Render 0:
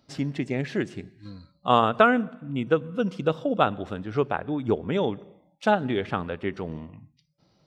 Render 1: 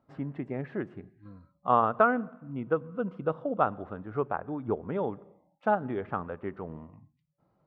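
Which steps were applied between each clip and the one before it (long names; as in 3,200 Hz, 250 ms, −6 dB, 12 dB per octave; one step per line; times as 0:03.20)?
drawn EQ curve 310 Hz 0 dB, 1,200 Hz +5 dB, 5,800 Hz −27 dB
level −7 dB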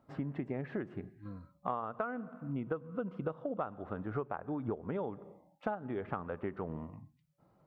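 downward compressor 10 to 1, threshold −36 dBFS, peak gain reduction 19.5 dB
level +3 dB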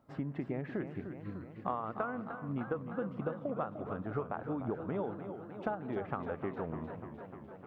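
feedback echo with a swinging delay time 302 ms, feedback 73%, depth 124 cents, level −9.5 dB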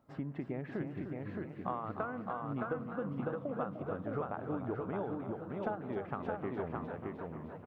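single-tap delay 618 ms −3 dB
level −2 dB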